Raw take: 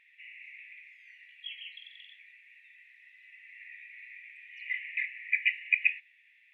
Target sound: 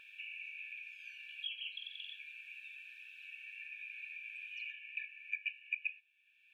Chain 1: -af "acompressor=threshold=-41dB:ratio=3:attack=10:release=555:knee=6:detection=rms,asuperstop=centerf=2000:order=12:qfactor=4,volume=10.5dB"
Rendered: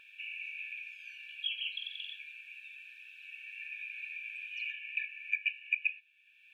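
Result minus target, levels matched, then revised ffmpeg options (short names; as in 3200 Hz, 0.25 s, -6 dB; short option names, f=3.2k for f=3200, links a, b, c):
compressor: peak gain reduction -6.5 dB
-af "acompressor=threshold=-51dB:ratio=3:attack=10:release=555:knee=6:detection=rms,asuperstop=centerf=2000:order=12:qfactor=4,volume=10.5dB"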